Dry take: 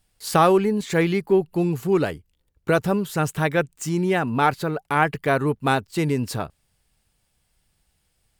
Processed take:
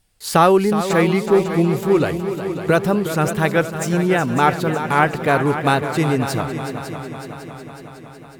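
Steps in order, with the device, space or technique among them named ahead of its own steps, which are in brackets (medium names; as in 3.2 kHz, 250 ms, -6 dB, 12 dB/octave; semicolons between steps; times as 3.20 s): multi-head tape echo (multi-head delay 184 ms, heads second and third, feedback 63%, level -11 dB; wow and flutter); trim +3.5 dB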